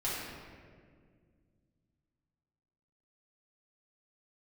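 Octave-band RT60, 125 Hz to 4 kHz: 3.3 s, 3.0 s, 2.3 s, 1.6 s, 1.6 s, 1.1 s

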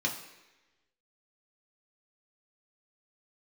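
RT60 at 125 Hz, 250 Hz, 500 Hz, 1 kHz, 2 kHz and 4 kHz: 0.85 s, 1.0 s, 1.1 s, 1.0 s, 1.2 s, 1.1 s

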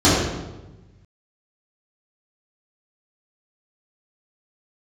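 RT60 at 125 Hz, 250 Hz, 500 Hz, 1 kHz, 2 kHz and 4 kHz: 1.9 s, 1.4 s, 1.2 s, 1.0 s, 0.85 s, 0.80 s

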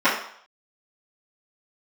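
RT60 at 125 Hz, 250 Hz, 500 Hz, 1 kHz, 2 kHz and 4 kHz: 0.35 s, 0.45 s, 0.60 s, 0.65 s, 0.60 s, 0.60 s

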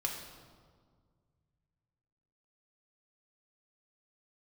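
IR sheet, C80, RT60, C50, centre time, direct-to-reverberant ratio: 6.0 dB, 1.8 s, 4.5 dB, 47 ms, -0.5 dB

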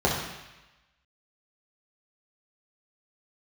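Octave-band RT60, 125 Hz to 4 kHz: 1.0 s, 0.95 s, 0.95 s, 1.1 s, 1.2 s, 1.1 s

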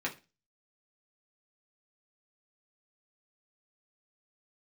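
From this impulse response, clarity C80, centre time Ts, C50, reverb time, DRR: 22.0 dB, 12 ms, 15.0 dB, 0.30 s, -3.5 dB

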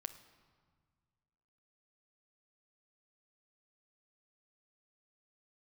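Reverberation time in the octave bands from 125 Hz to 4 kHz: 2.4 s, 2.2 s, 1.7 s, 1.8 s, 1.4 s, 1.2 s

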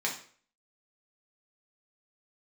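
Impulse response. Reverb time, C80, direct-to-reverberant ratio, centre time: 0.50 s, 12.5 dB, -3.0 dB, 22 ms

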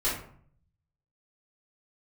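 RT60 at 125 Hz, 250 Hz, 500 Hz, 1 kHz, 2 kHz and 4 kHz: 1.1 s, 0.70 s, 0.55 s, 0.55 s, 0.45 s, 0.30 s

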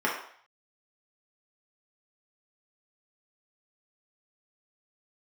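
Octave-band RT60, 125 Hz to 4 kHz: 0.35 s, 0.45 s, 0.55 s, 0.60 s, 0.60 s, 0.60 s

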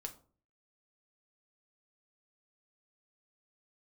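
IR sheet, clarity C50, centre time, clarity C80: 14.5 dB, 8 ms, 19.0 dB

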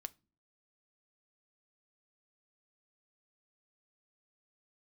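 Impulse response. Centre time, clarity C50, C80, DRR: 2 ms, 25.0 dB, 32.5 dB, 12.5 dB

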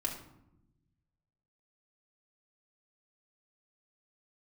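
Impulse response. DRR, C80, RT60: -2.0 dB, 10.0 dB, 0.85 s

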